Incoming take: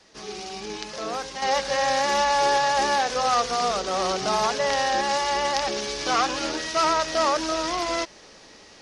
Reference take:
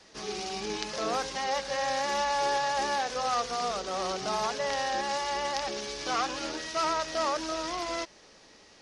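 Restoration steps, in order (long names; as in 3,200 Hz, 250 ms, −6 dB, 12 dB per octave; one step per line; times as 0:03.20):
level correction −7 dB, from 0:01.42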